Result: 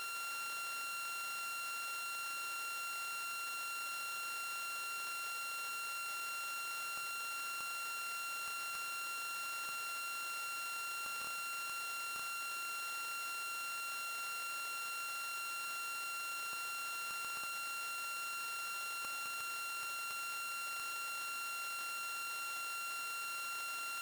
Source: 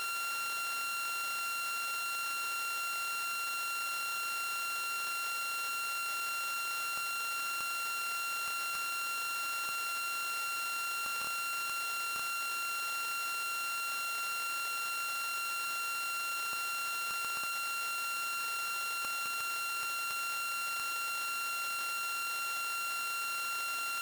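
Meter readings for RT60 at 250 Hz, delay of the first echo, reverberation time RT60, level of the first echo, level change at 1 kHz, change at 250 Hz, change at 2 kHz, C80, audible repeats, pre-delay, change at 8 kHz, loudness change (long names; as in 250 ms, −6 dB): 1.2 s, no echo audible, 1.1 s, no echo audible, −6.0 dB, −5.5 dB, −6.0 dB, 11.0 dB, no echo audible, 34 ms, −5.0 dB, −6.0 dB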